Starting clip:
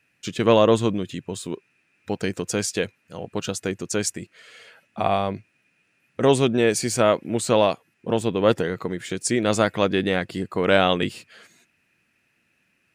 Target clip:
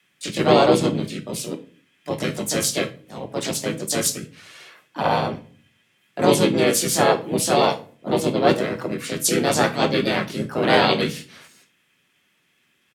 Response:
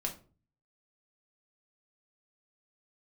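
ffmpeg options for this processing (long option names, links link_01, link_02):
-filter_complex "[0:a]afreqshift=30,asplit=4[link_01][link_02][link_03][link_04];[link_02]asetrate=29433,aresample=44100,atempo=1.49831,volume=-5dB[link_05];[link_03]asetrate=35002,aresample=44100,atempo=1.25992,volume=-4dB[link_06];[link_04]asetrate=55563,aresample=44100,atempo=0.793701,volume=-1dB[link_07];[link_01][link_05][link_06][link_07]amix=inputs=4:normalize=0,asplit=2[link_08][link_09];[1:a]atrim=start_sample=2205,asetrate=37044,aresample=44100,highshelf=frequency=2700:gain=11.5[link_10];[link_09][link_10]afir=irnorm=-1:irlink=0,volume=-6dB[link_11];[link_08][link_11]amix=inputs=2:normalize=0,volume=-7dB"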